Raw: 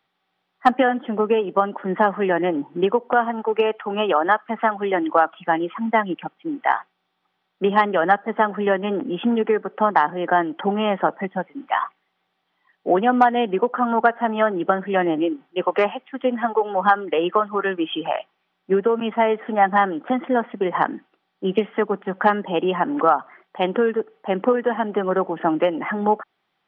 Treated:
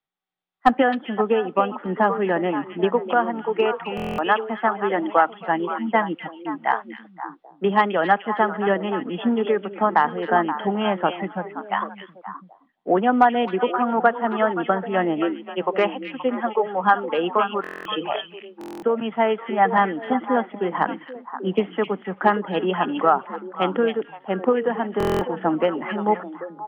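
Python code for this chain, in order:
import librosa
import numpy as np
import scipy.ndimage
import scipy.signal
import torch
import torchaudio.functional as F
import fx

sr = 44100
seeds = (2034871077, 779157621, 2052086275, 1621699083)

p1 = fx.low_shelf(x, sr, hz=91.0, db=11.5)
p2 = p1 + fx.echo_stepped(p1, sr, ms=263, hz=3000.0, octaves=-1.4, feedback_pct=70, wet_db=-3.0, dry=0)
p3 = fx.buffer_glitch(p2, sr, at_s=(3.95, 17.62, 18.59, 24.98), block=1024, repeats=9)
p4 = fx.band_widen(p3, sr, depth_pct=40)
y = F.gain(torch.from_numpy(p4), -2.0).numpy()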